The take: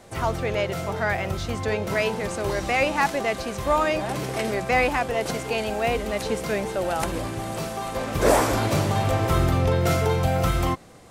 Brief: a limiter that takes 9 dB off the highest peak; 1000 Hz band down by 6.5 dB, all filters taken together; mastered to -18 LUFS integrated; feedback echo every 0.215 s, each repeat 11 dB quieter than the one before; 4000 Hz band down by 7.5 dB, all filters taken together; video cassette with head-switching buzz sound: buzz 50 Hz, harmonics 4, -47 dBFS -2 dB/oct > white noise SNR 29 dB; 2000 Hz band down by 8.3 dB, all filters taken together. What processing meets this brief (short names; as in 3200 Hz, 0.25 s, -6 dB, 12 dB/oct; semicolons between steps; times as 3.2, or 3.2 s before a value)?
bell 1000 Hz -7.5 dB; bell 2000 Hz -6 dB; bell 4000 Hz -7.5 dB; limiter -17.5 dBFS; feedback echo 0.215 s, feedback 28%, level -11 dB; buzz 50 Hz, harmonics 4, -47 dBFS -2 dB/oct; white noise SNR 29 dB; gain +10 dB